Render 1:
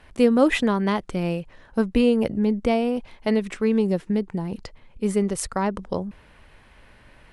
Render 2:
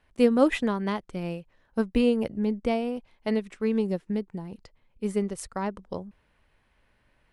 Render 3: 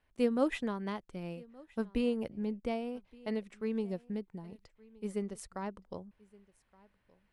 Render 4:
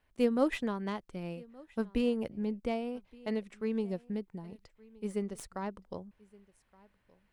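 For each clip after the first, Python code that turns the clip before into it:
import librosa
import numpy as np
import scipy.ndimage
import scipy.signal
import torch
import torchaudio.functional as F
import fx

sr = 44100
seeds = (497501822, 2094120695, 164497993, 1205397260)

y1 = fx.upward_expand(x, sr, threshold_db=-40.0, expansion=1.5)
y1 = y1 * librosa.db_to_amplitude(-2.0)
y2 = y1 + 10.0 ** (-24.0 / 20.0) * np.pad(y1, (int(1170 * sr / 1000.0), 0))[:len(y1)]
y2 = y2 * librosa.db_to_amplitude(-9.0)
y3 = fx.tracing_dist(y2, sr, depth_ms=0.036)
y3 = y3 * librosa.db_to_amplitude(1.5)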